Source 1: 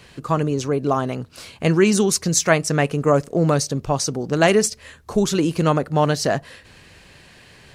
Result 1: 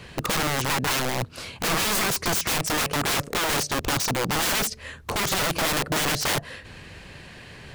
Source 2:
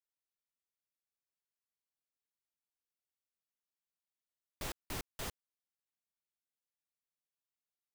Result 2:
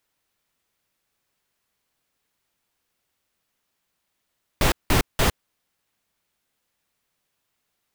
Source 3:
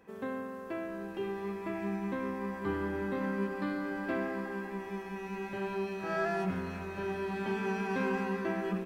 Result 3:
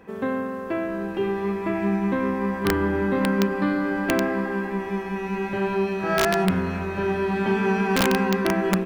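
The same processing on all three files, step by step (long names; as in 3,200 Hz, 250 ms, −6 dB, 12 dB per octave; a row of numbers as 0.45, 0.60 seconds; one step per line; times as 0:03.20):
bass and treble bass +2 dB, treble −5 dB
in parallel at −1.5 dB: downward compressor 16 to 1, threshold −24 dBFS
on the sum: wrap-around overflow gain 17.5 dB
loudness normalisation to −24 LKFS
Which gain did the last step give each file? −1.5, +16.0, +5.5 decibels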